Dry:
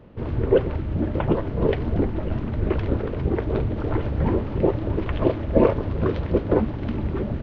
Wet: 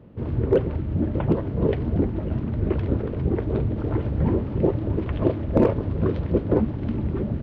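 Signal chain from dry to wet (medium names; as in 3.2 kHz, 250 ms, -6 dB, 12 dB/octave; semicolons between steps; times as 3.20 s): one-sided wavefolder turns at -9 dBFS; high-pass 120 Hz 6 dB/octave; bass shelf 350 Hz +12 dB; trim -6 dB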